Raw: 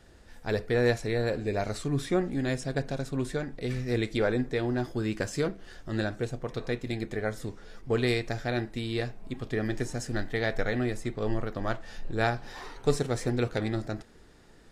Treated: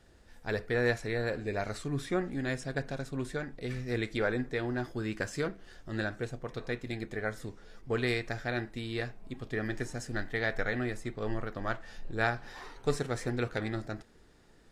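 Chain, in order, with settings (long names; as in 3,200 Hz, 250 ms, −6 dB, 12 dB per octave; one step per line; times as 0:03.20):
dynamic equaliser 1,600 Hz, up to +6 dB, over −45 dBFS, Q 1.1
level −5 dB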